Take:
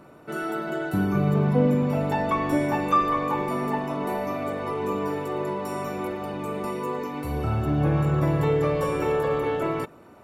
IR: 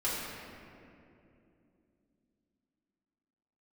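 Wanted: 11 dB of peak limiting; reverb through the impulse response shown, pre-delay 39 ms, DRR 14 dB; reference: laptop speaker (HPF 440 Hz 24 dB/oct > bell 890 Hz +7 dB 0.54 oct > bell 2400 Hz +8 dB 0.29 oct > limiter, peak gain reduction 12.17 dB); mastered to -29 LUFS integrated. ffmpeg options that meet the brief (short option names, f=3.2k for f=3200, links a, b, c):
-filter_complex "[0:a]alimiter=limit=-20.5dB:level=0:latency=1,asplit=2[a][b];[1:a]atrim=start_sample=2205,adelay=39[c];[b][c]afir=irnorm=-1:irlink=0,volume=-21.5dB[d];[a][d]amix=inputs=2:normalize=0,highpass=f=440:w=0.5412,highpass=f=440:w=1.3066,equalizer=f=890:t=o:w=0.54:g=7,equalizer=f=2.4k:t=o:w=0.29:g=8,volume=6.5dB,alimiter=limit=-21dB:level=0:latency=1"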